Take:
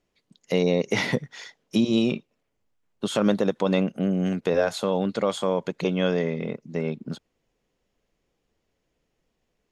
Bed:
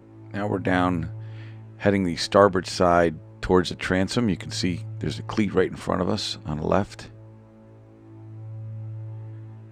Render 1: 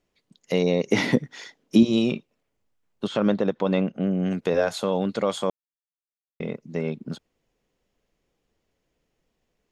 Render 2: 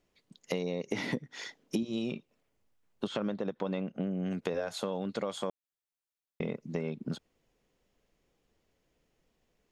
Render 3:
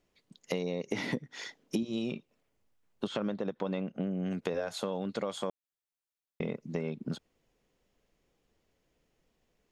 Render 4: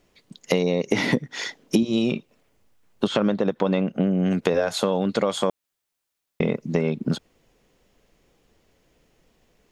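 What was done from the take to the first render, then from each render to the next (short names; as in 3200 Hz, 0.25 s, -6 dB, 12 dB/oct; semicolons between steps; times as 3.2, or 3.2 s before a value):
0.91–1.83 bell 280 Hz +9 dB 0.9 oct; 3.07–4.31 air absorption 150 m; 5.5–6.4 mute
compressor 8:1, threshold -30 dBFS, peak gain reduction 18.5 dB
nothing audible
gain +12 dB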